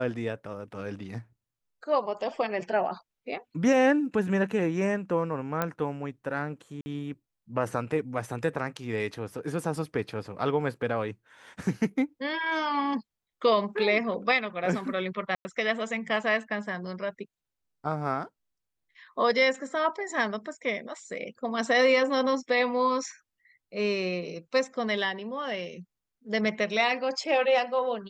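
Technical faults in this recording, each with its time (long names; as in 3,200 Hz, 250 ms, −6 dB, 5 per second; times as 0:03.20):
0:05.62: click −13 dBFS
0:06.81–0:06.86: drop-out 50 ms
0:15.35–0:15.45: drop-out 100 ms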